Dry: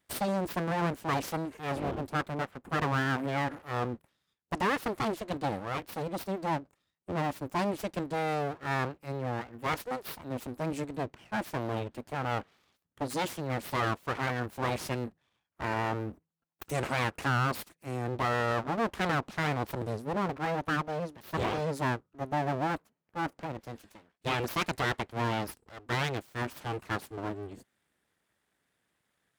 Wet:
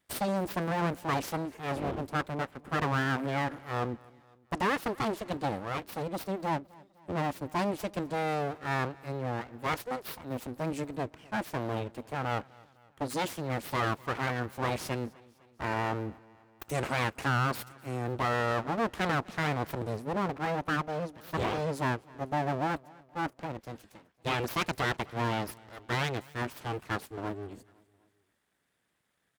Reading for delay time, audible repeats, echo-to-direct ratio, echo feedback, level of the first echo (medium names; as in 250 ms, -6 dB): 254 ms, 3, -22.5 dB, 54%, -24.0 dB